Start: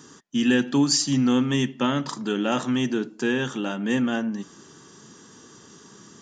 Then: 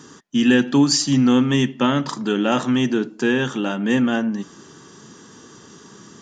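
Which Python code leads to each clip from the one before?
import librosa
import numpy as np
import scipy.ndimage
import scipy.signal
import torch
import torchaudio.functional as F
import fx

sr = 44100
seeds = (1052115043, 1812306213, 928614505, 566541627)

y = fx.high_shelf(x, sr, hz=6700.0, db=-6.0)
y = y * librosa.db_to_amplitude(5.0)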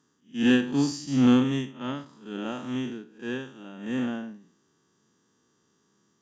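y = fx.spec_blur(x, sr, span_ms=165.0)
y = fx.cheby_harmonics(y, sr, harmonics=(3,), levels_db=(-22,), full_scale_db=-7.5)
y = fx.upward_expand(y, sr, threshold_db=-30.0, expansion=2.5)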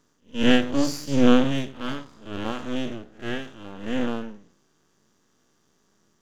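y = np.maximum(x, 0.0)
y = y * librosa.db_to_amplitude(6.5)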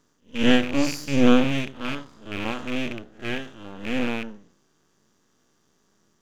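y = fx.rattle_buzz(x, sr, strikes_db=-34.0, level_db=-21.0)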